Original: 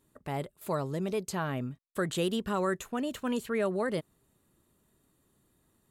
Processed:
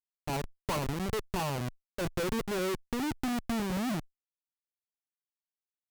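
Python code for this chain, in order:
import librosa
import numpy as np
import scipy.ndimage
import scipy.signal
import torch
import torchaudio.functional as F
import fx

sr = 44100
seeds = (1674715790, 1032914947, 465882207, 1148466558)

y = fx.filter_sweep_lowpass(x, sr, from_hz=1000.0, to_hz=240.0, start_s=1.24, end_s=3.77, q=4.8)
y = fx.schmitt(y, sr, flips_db=-31.0)
y = fx.cheby_harmonics(y, sr, harmonics=(2,), levels_db=(-14,), full_scale_db=-23.0)
y = y * 10.0 ** (-1.5 / 20.0)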